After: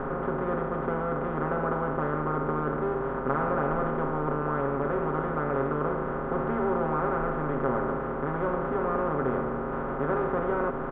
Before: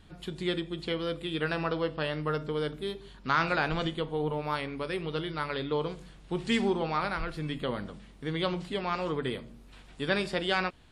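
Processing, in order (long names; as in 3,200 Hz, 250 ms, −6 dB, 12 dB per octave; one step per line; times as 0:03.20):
compressor on every frequency bin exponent 0.2
low-pass filter 1,300 Hz 24 dB per octave
comb filter 7.4 ms, depth 77%
level −7 dB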